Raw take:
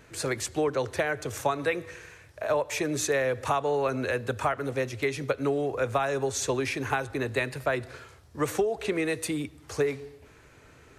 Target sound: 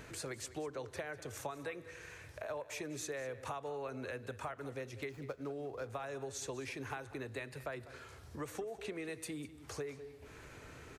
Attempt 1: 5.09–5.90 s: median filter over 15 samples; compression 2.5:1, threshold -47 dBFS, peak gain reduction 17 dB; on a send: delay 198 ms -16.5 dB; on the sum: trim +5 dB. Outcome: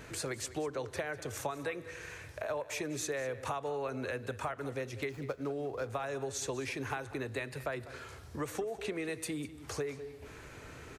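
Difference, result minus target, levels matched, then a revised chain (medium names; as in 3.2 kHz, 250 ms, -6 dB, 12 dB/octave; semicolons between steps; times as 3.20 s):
compression: peak gain reduction -5.5 dB
5.09–5.90 s: median filter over 15 samples; compression 2.5:1, threshold -56 dBFS, peak gain reduction 22.5 dB; on a send: delay 198 ms -16.5 dB; on the sum: trim +5 dB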